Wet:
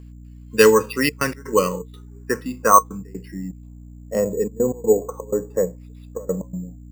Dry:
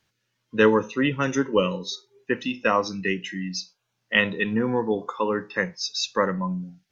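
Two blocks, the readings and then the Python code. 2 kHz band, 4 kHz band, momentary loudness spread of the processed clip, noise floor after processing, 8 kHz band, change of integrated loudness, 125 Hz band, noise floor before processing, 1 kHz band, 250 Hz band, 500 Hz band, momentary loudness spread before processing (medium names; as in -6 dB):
-2.0 dB, -4.0 dB, 19 LU, -41 dBFS, no reading, +4.5 dB, +0.5 dB, -77 dBFS, +7.0 dB, -0.5 dB, +5.0 dB, 11 LU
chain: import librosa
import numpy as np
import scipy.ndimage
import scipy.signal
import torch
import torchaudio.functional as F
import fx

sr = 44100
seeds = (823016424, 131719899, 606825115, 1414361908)

y = fx.step_gate(x, sr, bpm=124, pattern='x.xxxxxxx.x.xx', floor_db=-24.0, edge_ms=4.5)
y = fx.add_hum(y, sr, base_hz=60, snr_db=14)
y = fx.filter_sweep_lowpass(y, sr, from_hz=2800.0, to_hz=580.0, start_s=0.74, end_s=4.24, q=2.6)
y = fx.small_body(y, sr, hz=(450.0, 1100.0), ring_ms=95, db=10)
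y = np.repeat(y[::6], 6)[:len(y)]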